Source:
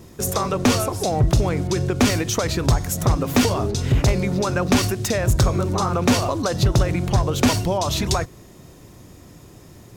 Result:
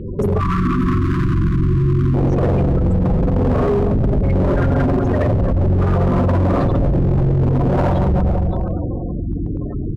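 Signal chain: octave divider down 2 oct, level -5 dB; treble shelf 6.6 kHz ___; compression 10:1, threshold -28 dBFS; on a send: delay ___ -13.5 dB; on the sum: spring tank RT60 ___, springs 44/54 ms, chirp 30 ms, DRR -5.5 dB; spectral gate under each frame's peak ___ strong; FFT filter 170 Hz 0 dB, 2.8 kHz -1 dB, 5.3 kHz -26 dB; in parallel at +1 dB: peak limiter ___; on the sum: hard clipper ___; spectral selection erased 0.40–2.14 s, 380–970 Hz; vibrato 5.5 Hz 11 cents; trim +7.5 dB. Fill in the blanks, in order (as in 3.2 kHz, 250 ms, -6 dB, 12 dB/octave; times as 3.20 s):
+9.5 dB, 375 ms, 2.6 s, -15 dB, -20.5 dBFS, -20 dBFS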